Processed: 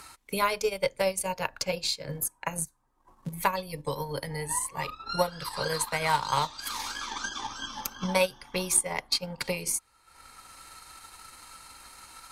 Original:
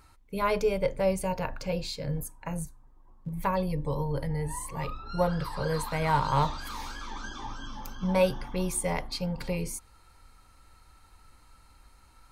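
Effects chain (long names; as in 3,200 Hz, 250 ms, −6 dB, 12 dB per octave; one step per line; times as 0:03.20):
low-pass filter 12,000 Hz 12 dB per octave
spectral tilt +3 dB per octave
transient designer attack +7 dB, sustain −9 dB
multiband upward and downward compressor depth 40%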